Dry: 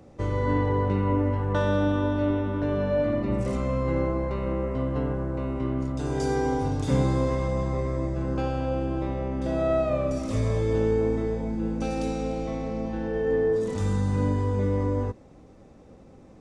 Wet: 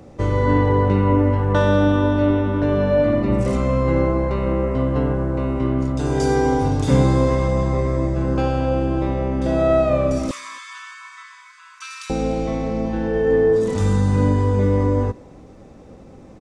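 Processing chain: 10.31–12.10 s: brick-wall FIR high-pass 940 Hz; speakerphone echo 270 ms, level -28 dB; trim +7.5 dB

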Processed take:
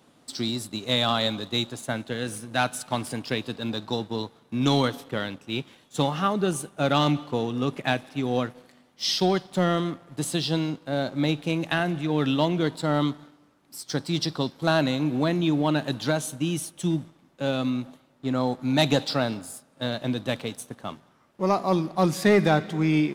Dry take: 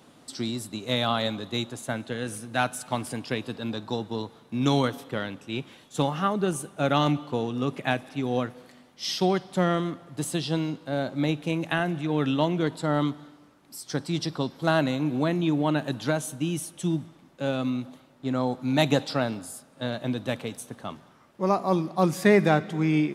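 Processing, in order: dynamic bell 4.2 kHz, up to +5 dB, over -46 dBFS, Q 1.5; waveshaping leveller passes 1; trim -2.5 dB

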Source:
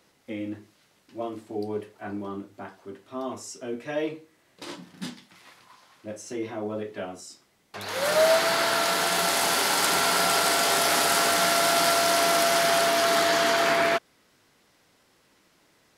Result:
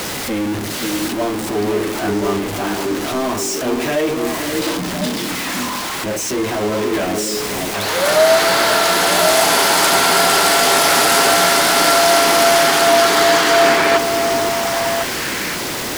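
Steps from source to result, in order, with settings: jump at every zero crossing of -25 dBFS; repeats whose band climbs or falls 527 ms, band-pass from 320 Hz, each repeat 1.4 oct, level -1 dB; trim +6.5 dB

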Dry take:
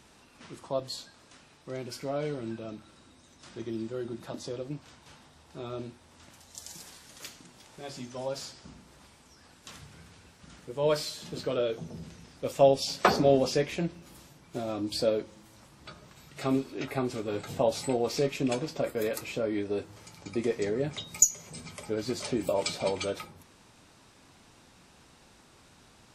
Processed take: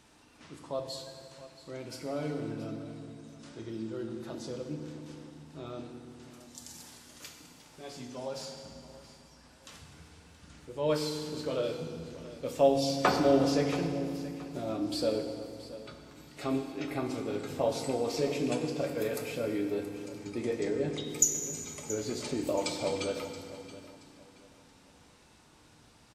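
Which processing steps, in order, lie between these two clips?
feedback delay 676 ms, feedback 29%, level -16 dB; FDN reverb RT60 2.3 s, low-frequency decay 1.55×, high-frequency decay 0.85×, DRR 4 dB; trim -4 dB

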